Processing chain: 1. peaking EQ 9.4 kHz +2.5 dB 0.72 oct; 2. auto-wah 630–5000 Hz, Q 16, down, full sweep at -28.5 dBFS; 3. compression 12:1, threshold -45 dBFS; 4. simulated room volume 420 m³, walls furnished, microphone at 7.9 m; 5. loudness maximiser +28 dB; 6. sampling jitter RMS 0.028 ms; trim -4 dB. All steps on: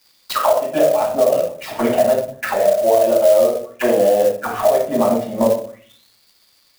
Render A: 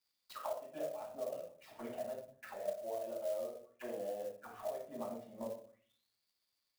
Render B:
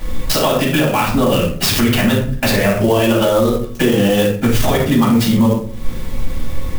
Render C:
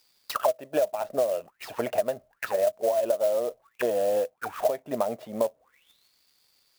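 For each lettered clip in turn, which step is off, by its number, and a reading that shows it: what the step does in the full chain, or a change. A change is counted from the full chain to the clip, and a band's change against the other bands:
5, crest factor change +5.0 dB; 2, 500 Hz band -12.5 dB; 4, crest factor change +5.5 dB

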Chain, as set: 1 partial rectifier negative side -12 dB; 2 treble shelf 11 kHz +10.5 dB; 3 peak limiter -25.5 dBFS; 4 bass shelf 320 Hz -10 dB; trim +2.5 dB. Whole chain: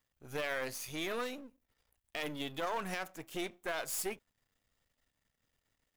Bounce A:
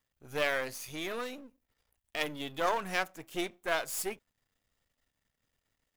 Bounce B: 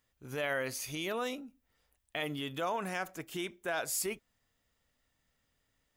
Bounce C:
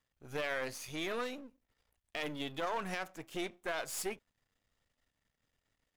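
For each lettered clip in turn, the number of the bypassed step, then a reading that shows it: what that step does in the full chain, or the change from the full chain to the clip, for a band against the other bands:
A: 3, mean gain reduction 1.5 dB; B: 1, distortion -4 dB; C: 2, 8 kHz band -2.5 dB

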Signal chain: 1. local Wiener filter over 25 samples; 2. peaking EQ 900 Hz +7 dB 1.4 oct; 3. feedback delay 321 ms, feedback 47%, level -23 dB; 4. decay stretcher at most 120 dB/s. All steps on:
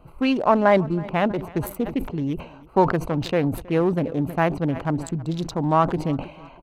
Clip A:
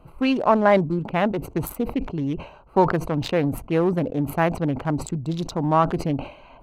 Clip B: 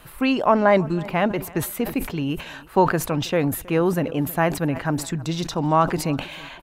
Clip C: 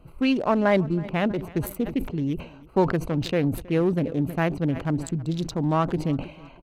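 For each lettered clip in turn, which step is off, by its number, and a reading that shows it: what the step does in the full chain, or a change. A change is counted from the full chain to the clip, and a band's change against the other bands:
3, 8 kHz band +2.0 dB; 1, 8 kHz band +10.0 dB; 2, 1 kHz band -5.5 dB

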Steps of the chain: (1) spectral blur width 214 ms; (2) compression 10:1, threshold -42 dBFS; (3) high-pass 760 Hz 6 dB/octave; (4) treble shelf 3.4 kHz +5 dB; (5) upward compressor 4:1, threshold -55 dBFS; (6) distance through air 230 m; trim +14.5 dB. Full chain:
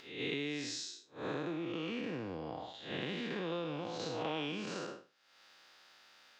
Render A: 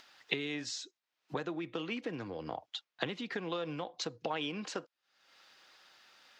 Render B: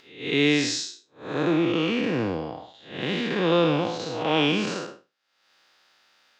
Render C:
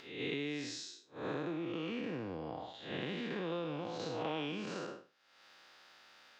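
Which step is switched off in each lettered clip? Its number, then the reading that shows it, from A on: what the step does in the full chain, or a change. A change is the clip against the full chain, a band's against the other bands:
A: 1, 125 Hz band -3.0 dB; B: 2, mean gain reduction 11.5 dB; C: 4, 8 kHz band -4.0 dB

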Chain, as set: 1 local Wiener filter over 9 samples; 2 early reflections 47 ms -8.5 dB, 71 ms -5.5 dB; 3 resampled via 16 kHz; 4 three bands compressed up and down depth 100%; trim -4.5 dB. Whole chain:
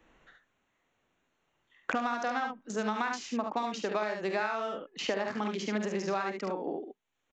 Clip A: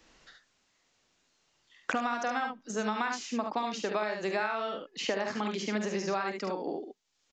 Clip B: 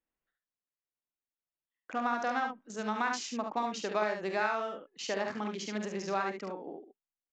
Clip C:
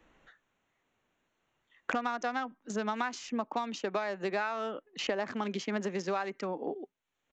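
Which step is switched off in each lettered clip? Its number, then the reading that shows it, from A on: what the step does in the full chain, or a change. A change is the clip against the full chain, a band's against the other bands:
1, 4 kHz band +1.5 dB; 4, momentary loudness spread change +5 LU; 2, loudness change -1.5 LU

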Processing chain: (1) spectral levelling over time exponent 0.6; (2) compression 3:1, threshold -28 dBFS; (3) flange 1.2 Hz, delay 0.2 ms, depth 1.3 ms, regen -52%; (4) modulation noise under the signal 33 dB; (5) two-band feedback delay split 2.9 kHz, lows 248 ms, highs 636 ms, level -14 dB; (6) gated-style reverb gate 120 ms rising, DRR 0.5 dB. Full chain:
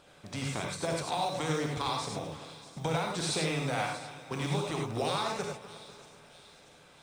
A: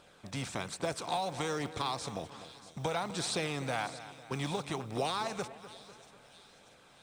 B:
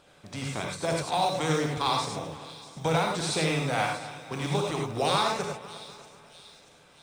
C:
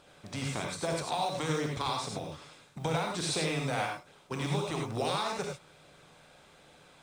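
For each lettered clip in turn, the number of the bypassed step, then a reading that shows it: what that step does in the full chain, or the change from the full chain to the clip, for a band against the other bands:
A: 6, momentary loudness spread change +1 LU; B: 2, mean gain reduction 2.0 dB; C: 5, momentary loudness spread change -3 LU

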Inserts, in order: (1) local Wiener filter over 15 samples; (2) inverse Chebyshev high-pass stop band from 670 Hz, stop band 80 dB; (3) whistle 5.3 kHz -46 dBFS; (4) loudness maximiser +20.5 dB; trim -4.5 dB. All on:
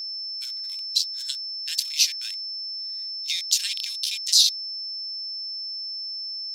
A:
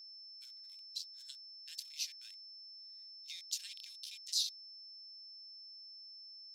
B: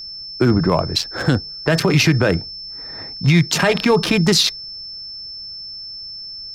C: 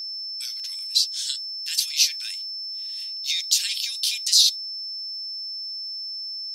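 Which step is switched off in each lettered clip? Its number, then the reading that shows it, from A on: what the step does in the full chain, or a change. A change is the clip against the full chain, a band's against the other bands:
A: 4, crest factor change +3.5 dB; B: 2, crest factor change -9.0 dB; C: 1, momentary loudness spread change +1 LU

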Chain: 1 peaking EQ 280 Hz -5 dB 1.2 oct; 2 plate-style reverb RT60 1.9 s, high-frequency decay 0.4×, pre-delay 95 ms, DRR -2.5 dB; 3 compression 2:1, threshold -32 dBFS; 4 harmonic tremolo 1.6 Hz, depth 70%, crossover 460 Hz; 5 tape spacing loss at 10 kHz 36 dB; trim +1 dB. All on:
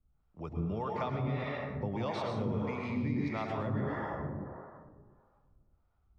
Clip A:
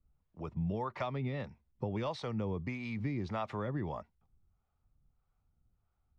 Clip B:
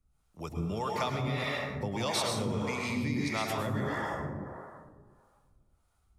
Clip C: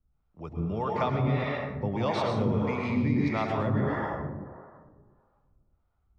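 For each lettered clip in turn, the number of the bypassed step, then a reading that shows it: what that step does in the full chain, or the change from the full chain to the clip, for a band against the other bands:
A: 2, momentary loudness spread change -4 LU; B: 5, 4 kHz band +11.5 dB; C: 3, mean gain reduction 5.0 dB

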